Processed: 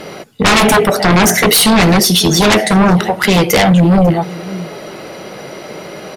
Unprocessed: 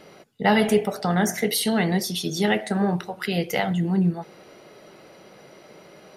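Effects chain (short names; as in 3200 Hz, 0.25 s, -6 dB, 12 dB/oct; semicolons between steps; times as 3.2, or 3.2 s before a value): echo 0.545 s -22.5 dB; sine folder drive 15 dB, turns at -5.5 dBFS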